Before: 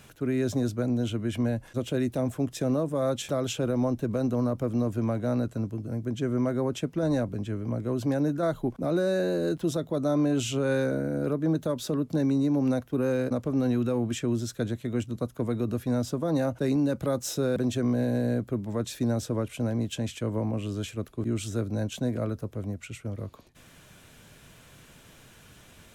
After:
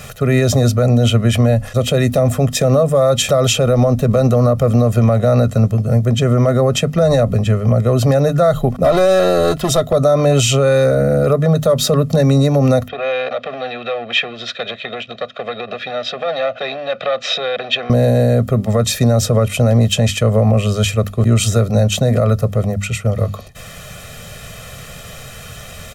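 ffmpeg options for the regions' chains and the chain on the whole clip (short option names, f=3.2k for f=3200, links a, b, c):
-filter_complex "[0:a]asettb=1/sr,asplit=3[a][b][c];[a]atrim=end=8.844[d];[b]atrim=start=8.84:end=9.93,asetpts=PTS-STARTPTS,afade=t=in:d=0.004:c=qsin,afade=t=out:st=1.086:d=0.004:c=qsin,asoftclip=type=hard:threshold=-23.5dB,aecho=1:1:3:0.43,atrim=end_sample=48069[e];[c]atrim=start=9.926[f];[d][e]acrossfade=d=0.004:c1=hsin:c2=qsin[g];[g][f]acrossfade=d=0.004:c1=qsin:c2=hsin,asettb=1/sr,asplit=3[h][i][j];[h]atrim=end=12.884[k];[i]atrim=start=12.88:end=17.9,asetpts=PTS-STARTPTS,afade=t=in:d=0.004:c=qsin,afade=t=out:st=5.016:d=0.004:c=qsin,acompressor=threshold=-29dB:ratio=12:attack=3.2:release=140:knee=1:detection=peak,aeval=exprs='clip(val(0),-1,0.0178)':c=same,highpass=480,equalizer=f=650:t=q:w=4:g=5,equalizer=f=930:t=q:w=4:g=-9,equalizer=f=1.6k:t=q:w=4:g=6,equalizer=f=2.5k:t=q:w=4:g=9,equalizer=f=3.6k:t=q:w=4:g=10,lowpass=f=4k:w=0.5412,lowpass=f=4k:w=1.3066[l];[j]atrim=start=17.896[m];[k][l]acrossfade=d=0.004:c1=hsin:c2=qsin[n];[n][m]acrossfade=d=0.004:c1=qsin:c2=hsin,bandreject=f=50:t=h:w=6,bandreject=f=100:t=h:w=6,bandreject=f=150:t=h:w=6,bandreject=f=200:t=h:w=6,bandreject=f=250:t=h:w=6,aecho=1:1:1.6:0.96,alimiter=level_in=20dB:limit=-1dB:release=50:level=0:latency=1,volume=-3.5dB"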